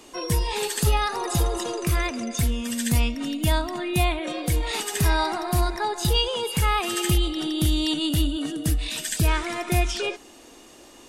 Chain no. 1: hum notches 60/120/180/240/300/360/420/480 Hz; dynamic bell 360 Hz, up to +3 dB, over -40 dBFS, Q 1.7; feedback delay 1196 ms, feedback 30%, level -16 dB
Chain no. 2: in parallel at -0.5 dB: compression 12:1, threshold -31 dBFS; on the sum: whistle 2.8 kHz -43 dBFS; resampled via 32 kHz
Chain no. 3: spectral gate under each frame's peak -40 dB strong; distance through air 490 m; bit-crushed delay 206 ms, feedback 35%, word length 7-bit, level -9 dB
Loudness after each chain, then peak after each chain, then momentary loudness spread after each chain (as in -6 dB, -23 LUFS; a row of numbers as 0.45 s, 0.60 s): -24.5 LUFS, -22.5 LUFS, -26.5 LUFS; -8.0 dBFS, -7.0 dBFS, -11.0 dBFS; 5 LU, 4 LU, 4 LU